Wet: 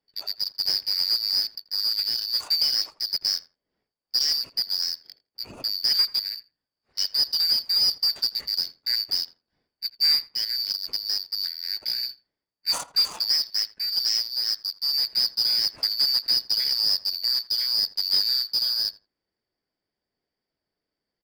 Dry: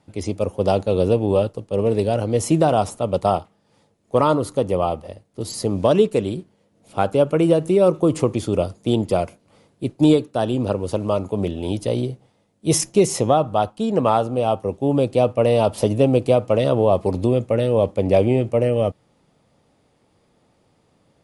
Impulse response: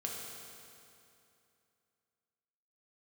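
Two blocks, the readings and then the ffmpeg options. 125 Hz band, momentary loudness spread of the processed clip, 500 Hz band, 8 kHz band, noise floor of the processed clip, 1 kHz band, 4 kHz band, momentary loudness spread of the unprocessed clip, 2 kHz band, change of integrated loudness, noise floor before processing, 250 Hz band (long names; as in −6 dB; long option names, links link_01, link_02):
below −35 dB, 8 LU, below −35 dB, −5.0 dB, below −85 dBFS, −23.5 dB, +16.0 dB, 8 LU, −5.5 dB, −2.5 dB, −63 dBFS, below −30 dB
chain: -filter_complex "[0:a]afftfilt=real='real(if(lt(b,272),68*(eq(floor(b/68),0)*3+eq(floor(b/68),1)*2+eq(floor(b/68),2)*1+eq(floor(b/68),3)*0)+mod(b,68),b),0)':imag='imag(if(lt(b,272),68*(eq(floor(b/68),0)*3+eq(floor(b/68),1)*2+eq(floor(b/68),2)*1+eq(floor(b/68),3)*0)+mod(b,68),b),0)':win_size=2048:overlap=0.75,adynamicsmooth=sensitivity=4:basefreq=1300,asplit=2[link_01][link_02];[link_02]adelay=83,lowpass=frequency=1600:poles=1,volume=-14.5dB,asplit=2[link_03][link_04];[link_04]adelay=83,lowpass=frequency=1600:poles=1,volume=0.23[link_05];[link_01][link_03][link_05]amix=inputs=3:normalize=0,volume=-6.5dB"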